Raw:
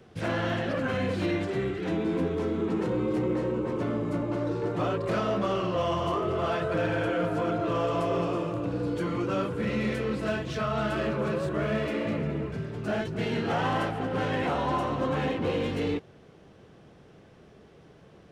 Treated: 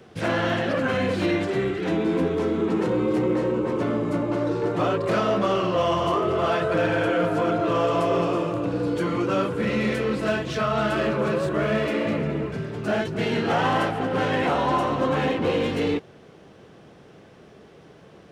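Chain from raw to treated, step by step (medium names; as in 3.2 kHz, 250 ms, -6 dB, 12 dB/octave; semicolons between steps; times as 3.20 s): bass shelf 100 Hz -9.5 dB; trim +6 dB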